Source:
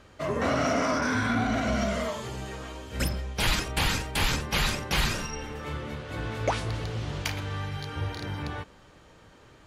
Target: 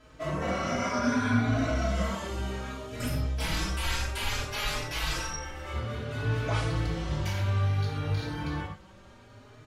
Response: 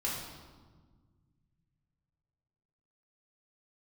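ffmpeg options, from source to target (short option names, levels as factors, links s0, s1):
-filter_complex "[0:a]asettb=1/sr,asplit=3[s0][s1][s2];[s0]atrim=end=3.644[s3];[s1]atrim=start=3.64:end=5.71,asetpts=PTS-STARTPTS,afade=t=in:d=0.004:c=qsin,afade=t=out:st=2.066:d=0.004:c=qsin,equalizer=f=180:t=o:w=1.5:g=-13.5[s4];[s2]atrim=start=5.706[s5];[s3][s4]acrossfade=d=0.004:c1=hsin:c2=qsin[s6];[s6][s5]acrossfade=d=0.004:c1=qsin:c2=hsin,alimiter=limit=0.0794:level=0:latency=1:release=22[s7];[1:a]atrim=start_sample=2205,atrim=end_sample=6615,asetrate=48510,aresample=44100[s8];[s7][s8]afir=irnorm=-1:irlink=0,asplit=2[s9][s10];[s10]adelay=4.2,afreqshift=0.61[s11];[s9][s11]amix=inputs=2:normalize=1"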